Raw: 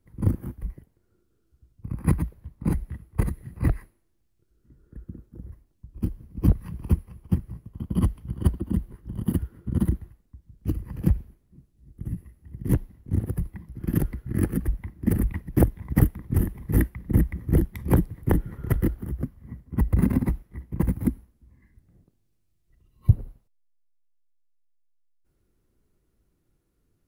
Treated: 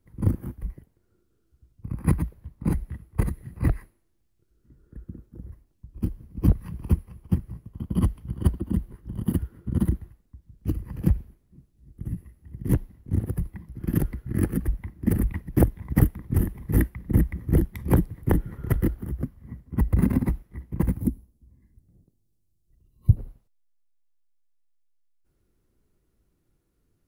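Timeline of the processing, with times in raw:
21.00–23.17 s: peaking EQ 1.7 kHz -14 dB 2.2 oct

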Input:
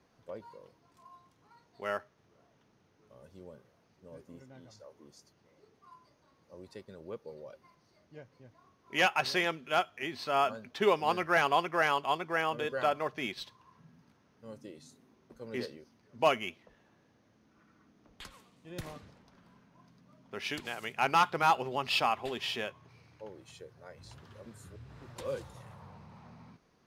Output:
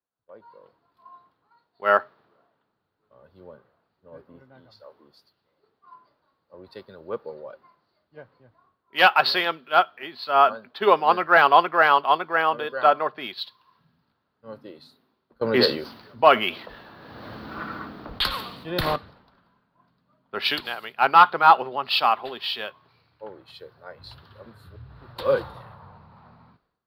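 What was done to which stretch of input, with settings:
15.41–18.96 s: level flattener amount 50%
whole clip: FFT filter 100 Hz 0 dB, 1.4 kHz +14 dB, 2.2 kHz +5 dB, 4.4 kHz +13 dB, 6.4 kHz -17 dB, 14 kHz +9 dB; level rider gain up to 12 dB; three bands expanded up and down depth 70%; trim -7.5 dB

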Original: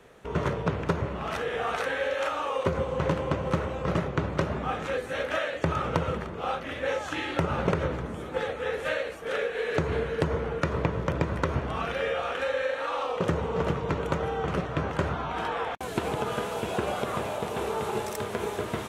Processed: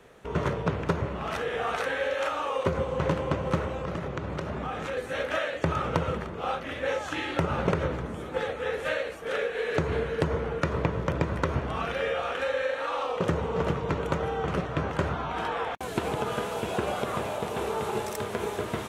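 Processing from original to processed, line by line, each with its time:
3.81–4.97 s: compression, threshold -28 dBFS

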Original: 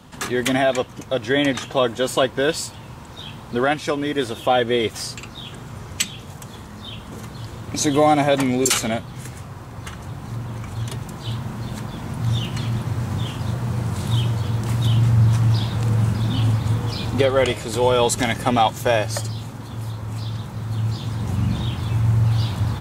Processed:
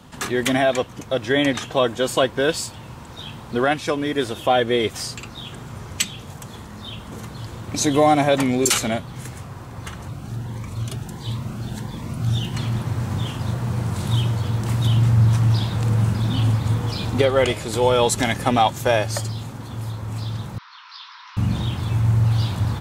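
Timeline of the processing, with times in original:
10.08–12.54 s: Shepard-style phaser rising 1.5 Hz
20.58–21.37 s: Chebyshev band-pass 970–5500 Hz, order 5

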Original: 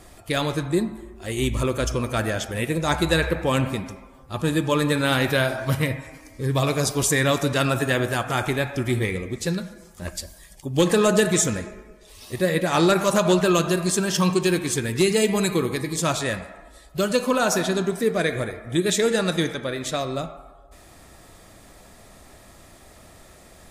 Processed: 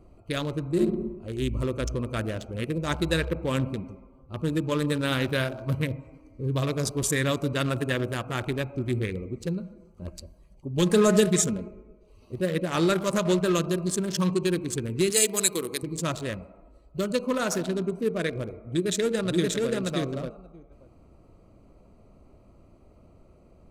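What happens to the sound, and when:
0.71–1.12 s: reverb throw, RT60 0.84 s, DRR -2 dB
10.77–11.68 s: comb 4.9 ms, depth 64%
15.10–15.83 s: tone controls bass -14 dB, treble +13 dB
18.60–19.71 s: echo throw 580 ms, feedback 10%, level -1.5 dB
whole clip: local Wiener filter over 25 samples; peaking EQ 780 Hz -7.5 dB 0.56 oct; trim -3.5 dB

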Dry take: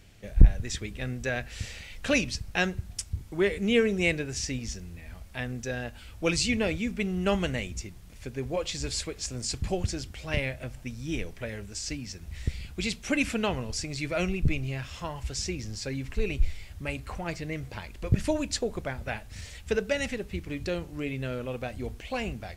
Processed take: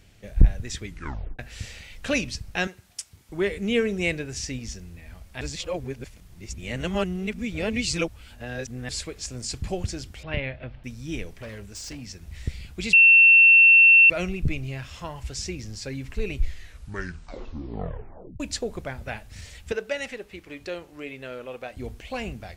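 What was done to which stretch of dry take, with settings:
0.84 s: tape stop 0.55 s
2.67–3.29 s: high-pass 790 Hz 6 dB/octave
5.41–8.89 s: reverse
10.23–10.84 s: inverse Chebyshev low-pass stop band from 7 kHz
11.34–12.03 s: hard clipper -34 dBFS
12.93–14.10 s: bleep 2.7 kHz -10 dBFS
16.34 s: tape stop 2.06 s
19.72–21.77 s: tone controls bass -15 dB, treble -4 dB

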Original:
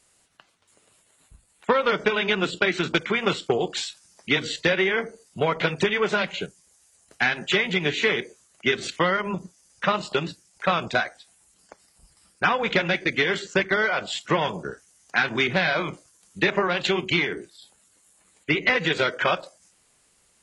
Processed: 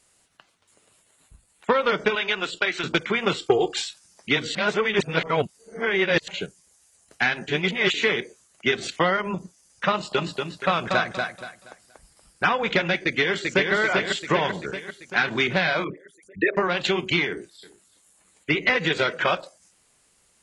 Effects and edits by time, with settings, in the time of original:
2.15–2.84 s: peaking EQ 160 Hz -12.5 dB 2.7 oct
3.38–3.82 s: comb 2.5 ms
4.55–6.28 s: reverse
7.48–7.94 s: reverse
8.69–9.20 s: peaking EQ 730 Hz +6.5 dB 0.32 oct
9.94–12.48 s: feedback delay 237 ms, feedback 29%, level -4.5 dB
13.03–13.73 s: echo throw 390 ms, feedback 60%, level -3.5 dB
15.84–16.57 s: resonances exaggerated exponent 3
17.29–19.37 s: delay 340 ms -18.5 dB

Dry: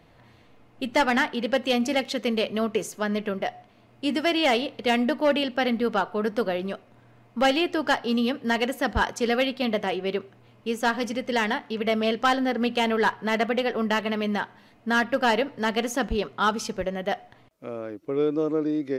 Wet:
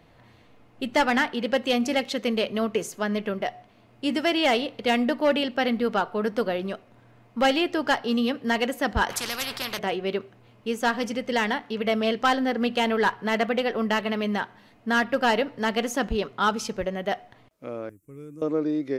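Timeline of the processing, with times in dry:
9.10–9.79 s: spectrum-flattening compressor 4:1
17.89–18.42 s: FFT filter 100 Hz 0 dB, 730 Hz -28 dB, 1.1 kHz -20 dB, 2.4 kHz -16 dB, 4.2 kHz -29 dB, 7.6 kHz +8 dB

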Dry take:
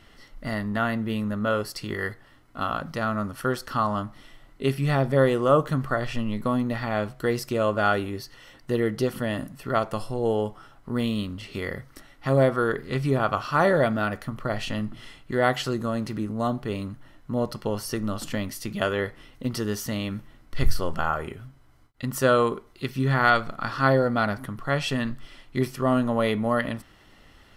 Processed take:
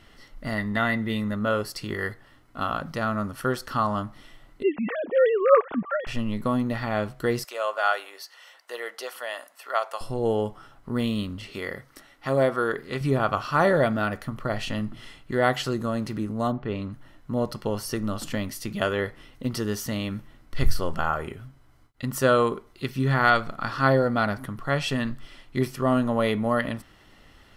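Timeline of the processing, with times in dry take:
0.58–1.36 s: small resonant body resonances 2/3.6 kHz, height 15 dB, ringing for 30 ms
4.63–6.07 s: formants replaced by sine waves
7.44–10.01 s: high-pass 610 Hz 24 dB/octave
11.50–13.01 s: bass shelf 170 Hz -11 dB
16.51–16.91 s: low-pass 1.9 kHz -> 5.1 kHz

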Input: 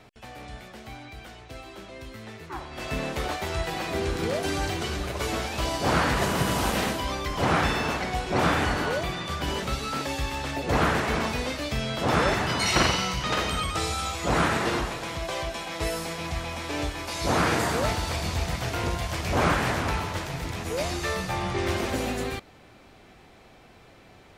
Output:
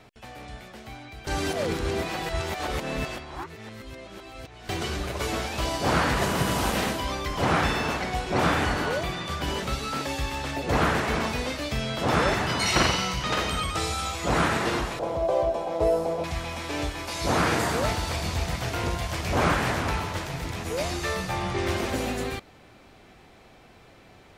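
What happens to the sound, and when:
1.27–4.69 s: reverse
14.99–16.24 s: FFT filter 240 Hz 0 dB, 590 Hz +13 dB, 1.8 kHz -11 dB

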